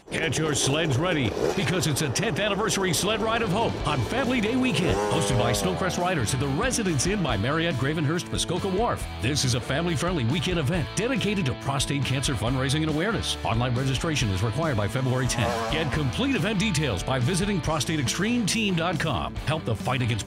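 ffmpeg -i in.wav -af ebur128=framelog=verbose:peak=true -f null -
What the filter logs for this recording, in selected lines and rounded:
Integrated loudness:
  I:         -24.9 LUFS
  Threshold: -34.9 LUFS
Loudness range:
  LRA:         1.4 LU
  Threshold: -44.9 LUFS
  LRA low:   -25.5 LUFS
  LRA high:  -24.1 LUFS
True peak:
  Peak:      -11.1 dBFS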